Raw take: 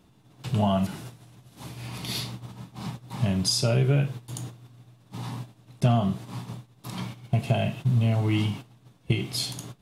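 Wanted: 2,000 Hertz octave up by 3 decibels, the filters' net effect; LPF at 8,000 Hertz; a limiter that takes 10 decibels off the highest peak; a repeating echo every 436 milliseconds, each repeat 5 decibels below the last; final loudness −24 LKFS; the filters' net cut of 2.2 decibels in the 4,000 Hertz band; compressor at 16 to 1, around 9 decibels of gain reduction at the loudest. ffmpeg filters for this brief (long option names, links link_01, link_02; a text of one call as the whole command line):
ffmpeg -i in.wav -af "lowpass=8000,equalizer=frequency=2000:width_type=o:gain=5.5,equalizer=frequency=4000:width_type=o:gain=-4,acompressor=threshold=-26dB:ratio=16,alimiter=level_in=2dB:limit=-24dB:level=0:latency=1,volume=-2dB,aecho=1:1:436|872|1308|1744|2180|2616|3052:0.562|0.315|0.176|0.0988|0.0553|0.031|0.0173,volume=11.5dB" out.wav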